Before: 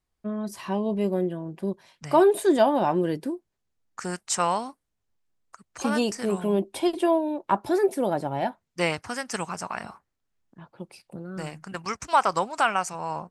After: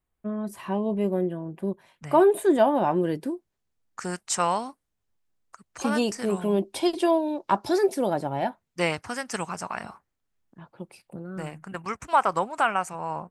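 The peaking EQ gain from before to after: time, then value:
peaking EQ 5.1 kHz 1 oct
2.76 s -11 dB
3.30 s -1 dB
6.34 s -1 dB
7.13 s +9.5 dB
7.78 s +9.5 dB
8.31 s -2 dB
10.70 s -2 dB
11.52 s -12 dB

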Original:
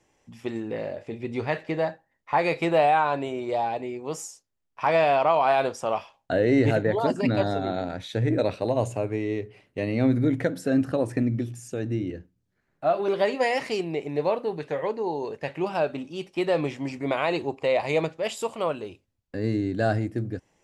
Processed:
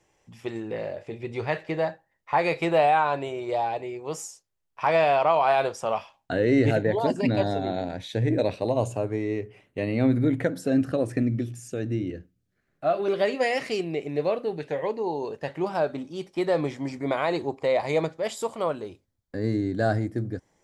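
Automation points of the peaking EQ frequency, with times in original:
peaking EQ -11.5 dB 0.24 oct
5.75 s 250 Hz
6.86 s 1.3 kHz
8.54 s 1.3 kHz
9.83 s 5.8 kHz
10.40 s 5.8 kHz
10.81 s 910 Hz
14.43 s 910 Hz
15.62 s 2.7 kHz

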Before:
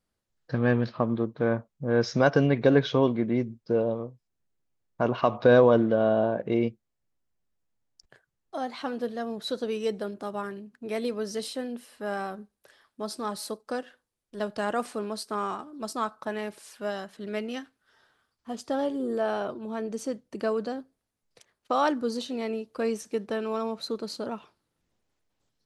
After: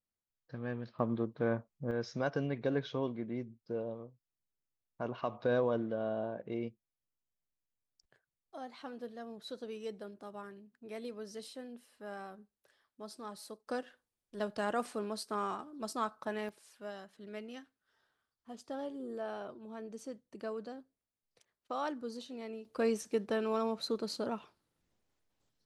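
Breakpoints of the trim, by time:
-16 dB
from 0.99 s -7 dB
from 1.91 s -13 dB
from 13.67 s -5.5 dB
from 16.49 s -12.5 dB
from 22.65 s -3 dB

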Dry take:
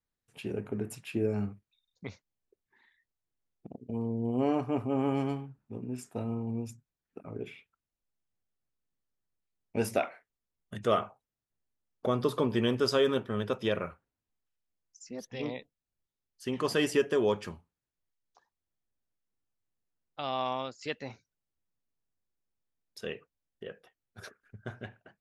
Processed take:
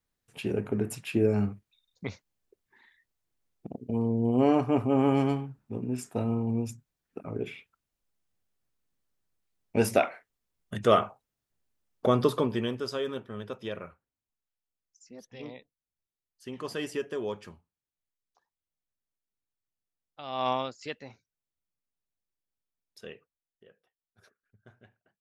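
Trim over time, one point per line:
12.21 s +5.5 dB
12.84 s -6.5 dB
20.25 s -6.5 dB
20.49 s +6 dB
21.09 s -5.5 dB
23.03 s -5.5 dB
23.67 s -15.5 dB

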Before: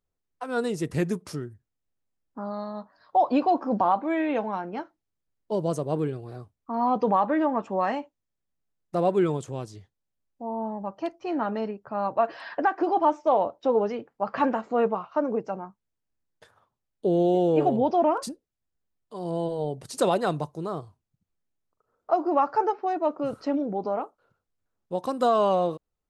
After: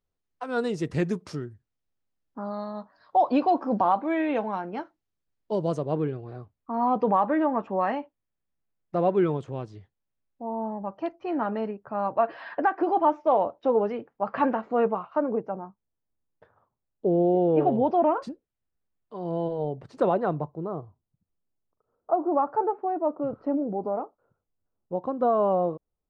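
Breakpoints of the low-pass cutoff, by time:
5.59 s 5.7 kHz
6.05 s 2.8 kHz
15.13 s 2.8 kHz
15.57 s 1.2 kHz
17.32 s 1.2 kHz
17.72 s 2.4 kHz
19.45 s 2.4 kHz
20.63 s 1 kHz

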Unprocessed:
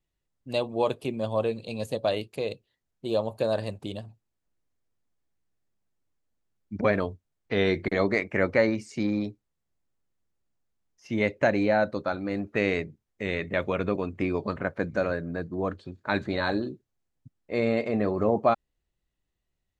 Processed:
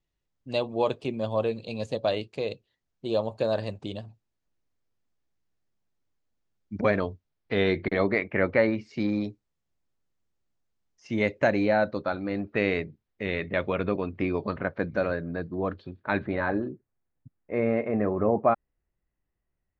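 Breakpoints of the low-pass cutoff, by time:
low-pass 24 dB/octave
6.89 s 6.9 kHz
8.08 s 3.8 kHz
8.78 s 3.8 kHz
9.26 s 7.5 kHz
11.25 s 7.5 kHz
12.09 s 4.7 kHz
15.78 s 4.7 kHz
16.49 s 2.2 kHz

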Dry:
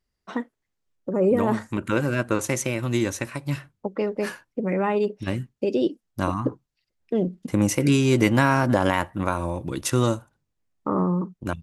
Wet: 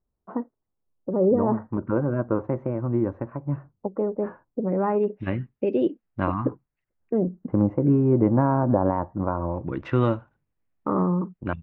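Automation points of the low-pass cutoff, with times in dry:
low-pass 24 dB/octave
4.71 s 1.1 kHz
5.21 s 2.4 kHz
6.48 s 2.4 kHz
7.75 s 1 kHz
9.24 s 1 kHz
9.95 s 2.6 kHz

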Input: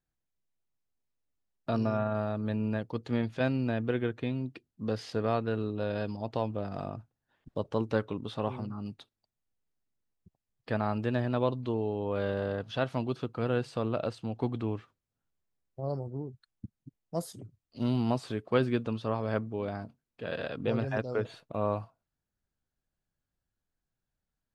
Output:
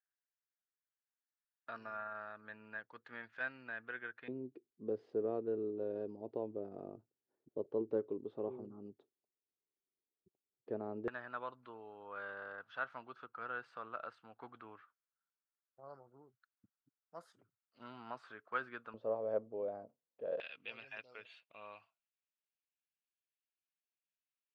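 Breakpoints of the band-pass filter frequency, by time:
band-pass filter, Q 3.8
1.6 kHz
from 4.28 s 390 Hz
from 11.08 s 1.4 kHz
from 18.94 s 540 Hz
from 20.40 s 2.6 kHz

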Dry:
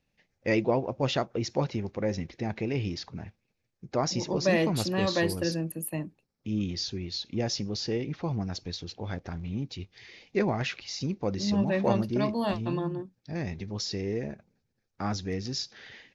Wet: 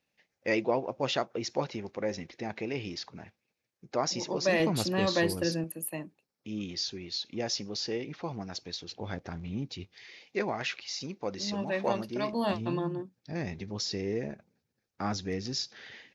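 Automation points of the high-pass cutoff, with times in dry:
high-pass 6 dB/octave
390 Hz
from 4.60 s 120 Hz
from 5.64 s 410 Hz
from 8.91 s 140 Hz
from 9.95 s 550 Hz
from 12.33 s 140 Hz

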